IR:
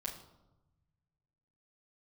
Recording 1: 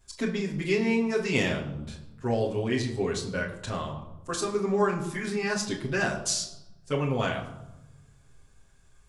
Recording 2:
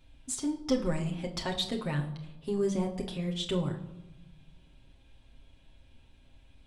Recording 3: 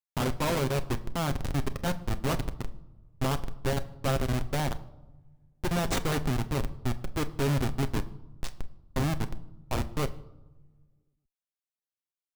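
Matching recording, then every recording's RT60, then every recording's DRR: 1; 1.0 s, 1.0 s, no single decay rate; -5.5 dB, 0.0 dB, 9.0 dB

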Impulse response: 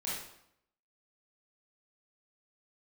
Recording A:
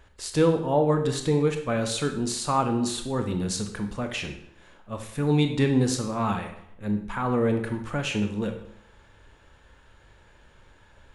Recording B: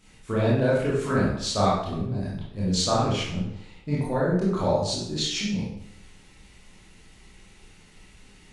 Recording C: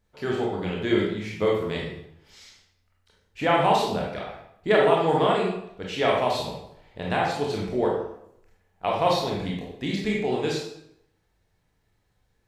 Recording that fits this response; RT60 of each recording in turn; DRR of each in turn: B; 0.75 s, 0.75 s, 0.75 s; 5.5 dB, -8.0 dB, -3.0 dB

